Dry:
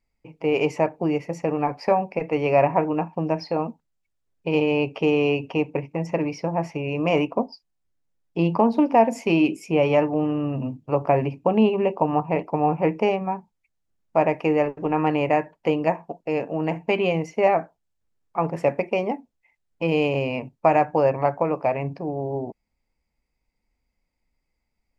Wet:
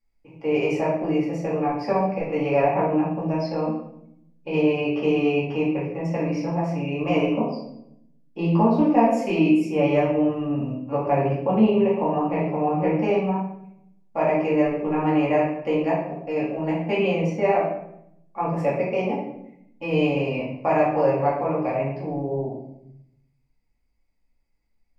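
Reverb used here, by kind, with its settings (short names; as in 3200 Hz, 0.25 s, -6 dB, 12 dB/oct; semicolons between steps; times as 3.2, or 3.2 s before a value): shoebox room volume 190 m³, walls mixed, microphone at 2.3 m; gain -9 dB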